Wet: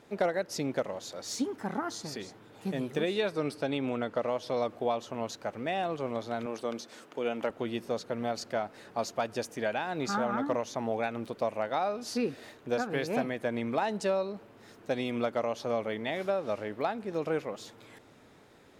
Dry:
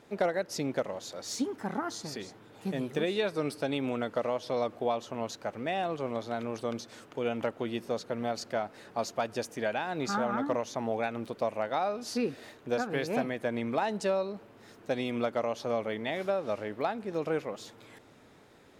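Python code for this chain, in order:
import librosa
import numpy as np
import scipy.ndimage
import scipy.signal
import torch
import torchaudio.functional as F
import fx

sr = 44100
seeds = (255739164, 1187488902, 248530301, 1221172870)

y = fx.high_shelf(x, sr, hz=fx.line((3.31, 10000.0), (4.27, 6000.0)), db=-8.0, at=(3.31, 4.27), fade=0.02)
y = fx.highpass(y, sr, hz=210.0, slope=12, at=(6.46, 7.5))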